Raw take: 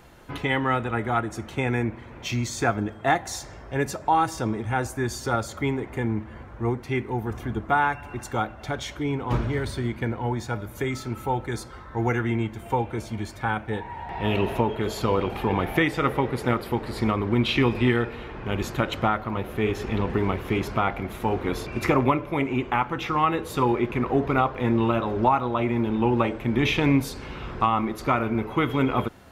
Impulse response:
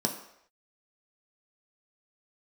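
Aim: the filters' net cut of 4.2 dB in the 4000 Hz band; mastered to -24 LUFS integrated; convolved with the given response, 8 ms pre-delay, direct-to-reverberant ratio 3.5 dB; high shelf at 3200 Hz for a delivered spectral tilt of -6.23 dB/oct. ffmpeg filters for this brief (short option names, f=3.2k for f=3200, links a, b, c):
-filter_complex "[0:a]highshelf=f=3.2k:g=3,equalizer=f=4k:t=o:g=-8,asplit=2[a][b];[1:a]atrim=start_sample=2205,adelay=8[c];[b][c]afir=irnorm=-1:irlink=0,volume=-10.5dB[d];[a][d]amix=inputs=2:normalize=0,volume=-2dB"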